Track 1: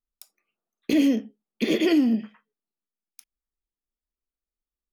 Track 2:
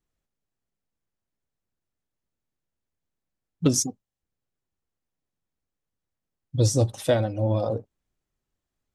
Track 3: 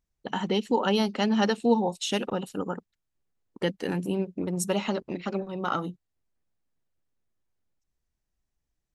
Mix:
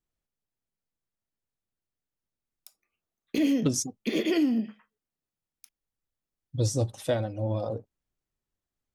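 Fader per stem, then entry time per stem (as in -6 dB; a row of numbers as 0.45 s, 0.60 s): -4.5 dB, -5.5 dB, mute; 2.45 s, 0.00 s, mute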